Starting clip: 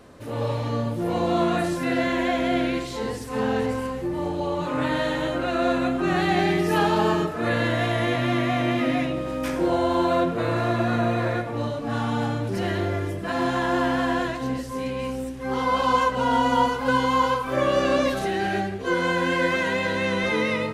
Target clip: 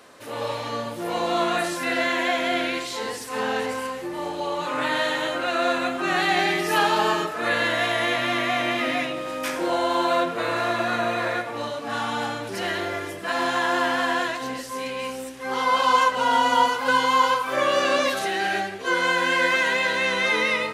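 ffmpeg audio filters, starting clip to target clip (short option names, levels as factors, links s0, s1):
-af "highpass=f=1100:p=1,volume=2"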